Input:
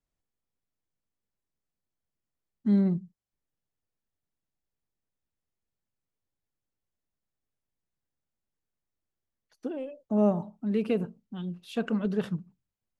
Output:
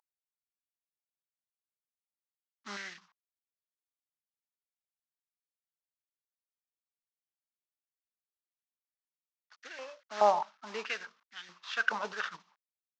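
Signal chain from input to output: CVSD 32 kbps; stepped high-pass 4.7 Hz 890–1800 Hz; gain +2.5 dB

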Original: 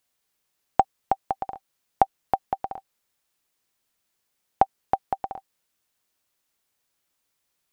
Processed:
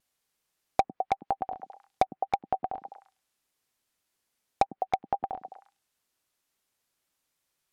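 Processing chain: delay with a stepping band-pass 0.103 s, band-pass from 230 Hz, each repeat 1.4 oct, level -5.5 dB; vibrato 1.8 Hz 44 cents; treble ducked by the level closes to 1700 Hz, closed at -23.5 dBFS; in parallel at -7 dB: wrapped overs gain 11 dB; on the sum: treble ducked by the level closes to 2900 Hz, closed at -20 dBFS; gain -5.5 dB

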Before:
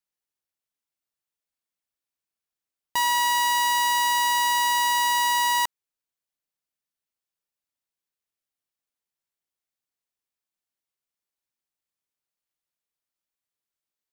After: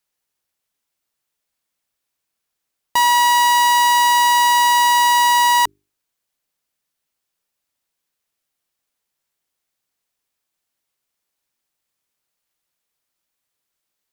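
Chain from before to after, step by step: in parallel at -10 dB: sine folder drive 5 dB, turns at -17 dBFS; on the sum: notches 50/100/150/200/250/300/350/400 Hz; gain +5.5 dB

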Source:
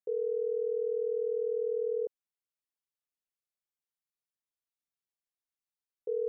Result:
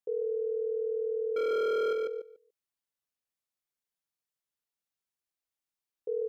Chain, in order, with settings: 1.36–1.93 sample leveller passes 3; on a send: feedback echo 0.145 s, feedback 16%, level -4.5 dB

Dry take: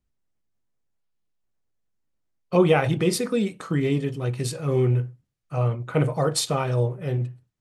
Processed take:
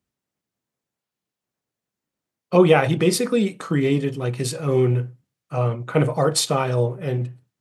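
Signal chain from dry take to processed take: HPF 130 Hz 12 dB/oct; gain +4 dB

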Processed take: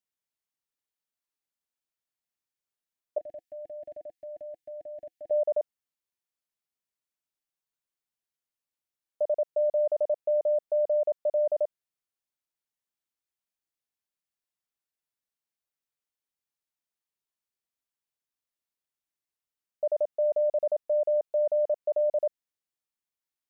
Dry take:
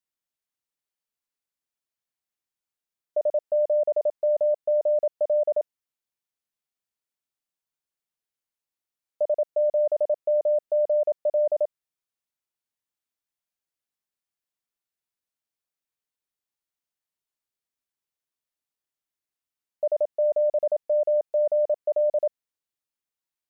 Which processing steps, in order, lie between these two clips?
3.18–5.31 EQ curve 330 Hz 0 dB, 510 Hz -20 dB, 730 Hz -10 dB, 1200 Hz -30 dB, 1700 Hz +4 dB; gain -3 dB

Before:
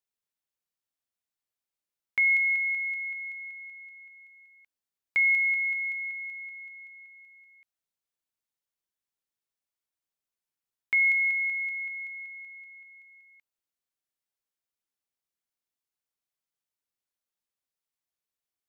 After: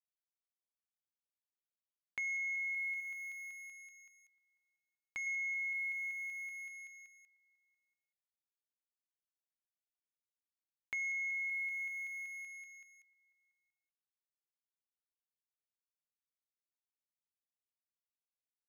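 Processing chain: crossover distortion -51.5 dBFS; dynamic EQ 2300 Hz, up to +5 dB, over -35 dBFS, Q 3.3; soft clip -17 dBFS, distortion -18 dB; limiter -27 dBFS, peak gain reduction 8.5 dB; 3–5.27 ten-band EQ 500 Hz -7 dB, 1000 Hz +4 dB, 2000 Hz -6 dB; compressor 2:1, threshold -44 dBFS, peak gain reduction 8 dB; outdoor echo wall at 150 m, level -24 dB

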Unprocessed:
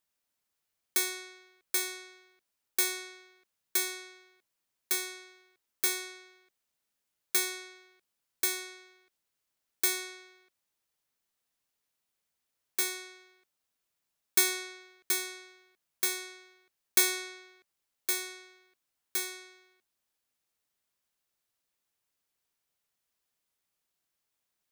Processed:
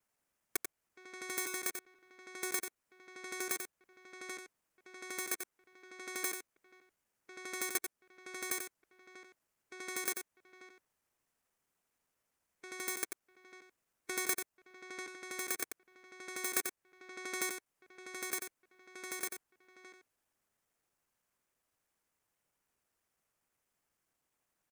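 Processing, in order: slices in reverse order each 81 ms, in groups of 6; bell 3900 Hz -10.5 dB 1.1 oct; harmonic-percussive split percussive +4 dB; high shelf 11000 Hz -11 dB; compressor 1.5:1, threshold -45 dBFS, peak gain reduction 8 dB; echo 90 ms -7 dB; gain +2.5 dB

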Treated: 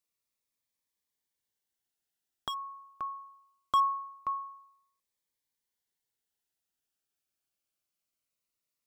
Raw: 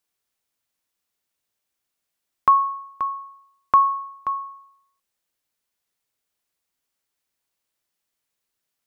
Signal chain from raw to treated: hard clip -12.5 dBFS, distortion -15 dB; cascading phaser falling 0.23 Hz; gain -6.5 dB

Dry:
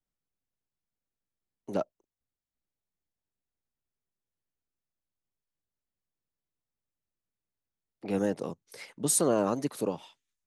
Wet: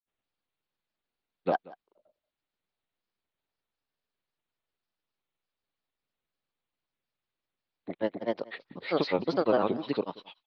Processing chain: steep low-pass 4500 Hz 72 dB/oct; low shelf 260 Hz -11.5 dB; notch 1800 Hz, Q 17; in parallel at -0.5 dB: compressor, threshold -39 dBFS, peak gain reduction 14 dB; on the sum: grains 0.1 s, grains 20/s, spray 0.308 s, pitch spread up and down by 3 st; on a send: echo 0.183 s -21.5 dB; on the sum: gain +4 dB

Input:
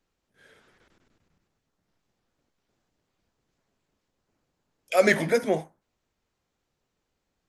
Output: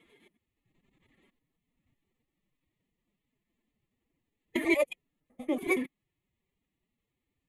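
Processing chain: slices in reverse order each 93 ms, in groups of 7; fixed phaser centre 2300 Hz, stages 4; formant-preserving pitch shift +8 st; gain -2 dB

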